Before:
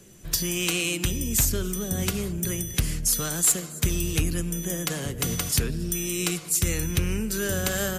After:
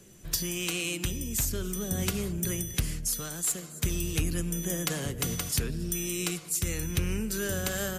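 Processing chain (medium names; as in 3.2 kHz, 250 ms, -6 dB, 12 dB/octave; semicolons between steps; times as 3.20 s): gain riding 0.5 s; trim -5 dB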